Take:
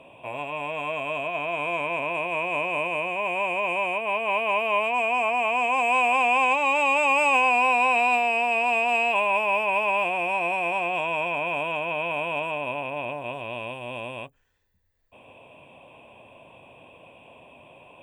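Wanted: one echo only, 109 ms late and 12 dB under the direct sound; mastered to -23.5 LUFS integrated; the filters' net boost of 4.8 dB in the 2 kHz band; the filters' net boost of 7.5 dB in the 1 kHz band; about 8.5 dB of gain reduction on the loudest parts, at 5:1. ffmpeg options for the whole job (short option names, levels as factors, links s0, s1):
-af "equalizer=f=1000:t=o:g=8,equalizer=f=2000:t=o:g=5.5,acompressor=threshold=0.0891:ratio=5,aecho=1:1:109:0.251,volume=0.944"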